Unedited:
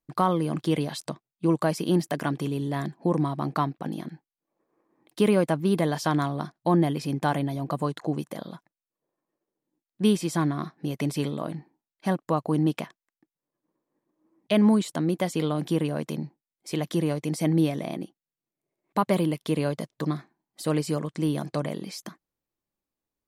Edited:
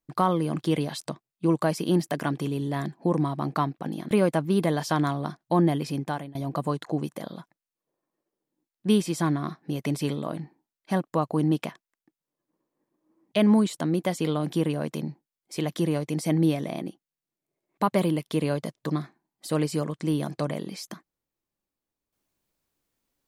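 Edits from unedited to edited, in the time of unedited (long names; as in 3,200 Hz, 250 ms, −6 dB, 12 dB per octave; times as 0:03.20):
0:04.11–0:05.26: remove
0:07.05–0:07.50: fade out, to −23.5 dB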